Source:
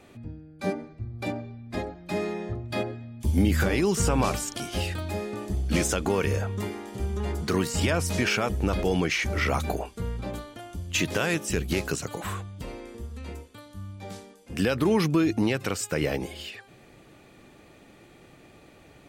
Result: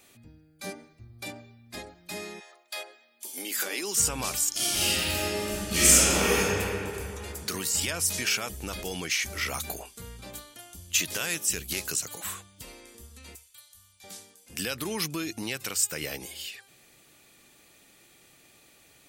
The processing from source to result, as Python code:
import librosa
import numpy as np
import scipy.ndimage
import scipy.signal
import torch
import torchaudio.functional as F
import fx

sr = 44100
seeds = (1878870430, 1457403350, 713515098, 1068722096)

y = fx.highpass(x, sr, hz=fx.line((2.39, 690.0), (3.94, 240.0)), slope=24, at=(2.39, 3.94), fade=0.02)
y = fx.reverb_throw(y, sr, start_s=4.5, length_s=1.93, rt60_s=2.8, drr_db=-10.5)
y = fx.tone_stack(y, sr, knobs='10-0-10', at=(13.35, 14.04))
y = librosa.effects.preemphasis(y, coef=0.9, zi=[0.0])
y = fx.hum_notches(y, sr, base_hz=50, count=2)
y = y * 10.0 ** (7.5 / 20.0)